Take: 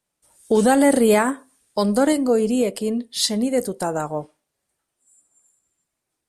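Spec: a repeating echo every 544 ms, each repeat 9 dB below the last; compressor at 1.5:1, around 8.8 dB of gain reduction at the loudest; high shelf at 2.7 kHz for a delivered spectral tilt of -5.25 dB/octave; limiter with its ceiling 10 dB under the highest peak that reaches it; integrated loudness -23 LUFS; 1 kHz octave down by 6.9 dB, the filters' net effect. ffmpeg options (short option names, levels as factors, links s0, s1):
-af "equalizer=f=1000:t=o:g=-8.5,highshelf=f=2700:g=-8,acompressor=threshold=0.0112:ratio=1.5,alimiter=level_in=1.41:limit=0.0631:level=0:latency=1,volume=0.708,aecho=1:1:544|1088|1632|2176:0.355|0.124|0.0435|0.0152,volume=3.98"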